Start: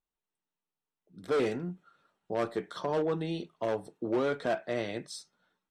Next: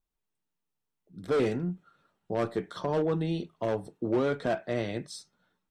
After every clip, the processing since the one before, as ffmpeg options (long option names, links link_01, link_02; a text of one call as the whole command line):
ffmpeg -i in.wav -af "lowshelf=frequency=190:gain=10.5" out.wav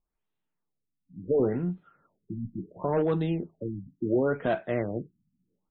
ffmpeg -i in.wav -af "afftfilt=real='re*lt(b*sr/1024,280*pow(4300/280,0.5+0.5*sin(2*PI*0.71*pts/sr)))':imag='im*lt(b*sr/1024,280*pow(4300/280,0.5+0.5*sin(2*PI*0.71*pts/sr)))':win_size=1024:overlap=0.75,volume=2dB" out.wav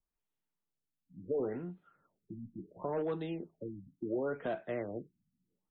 ffmpeg -i in.wav -filter_complex "[0:a]acrossover=split=260|600[link_01][link_02][link_03];[link_01]acompressor=threshold=-42dB:ratio=4[link_04];[link_02]acompressor=threshold=-27dB:ratio=4[link_05];[link_03]acompressor=threshold=-33dB:ratio=4[link_06];[link_04][link_05][link_06]amix=inputs=3:normalize=0,volume=-6.5dB" out.wav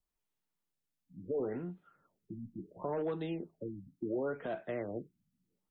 ffmpeg -i in.wav -af "alimiter=level_in=4dB:limit=-24dB:level=0:latency=1:release=118,volume=-4dB,volume=1dB" out.wav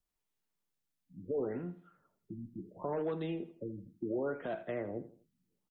ffmpeg -i in.wav -af "aecho=1:1:81|162|243:0.188|0.0659|0.0231" out.wav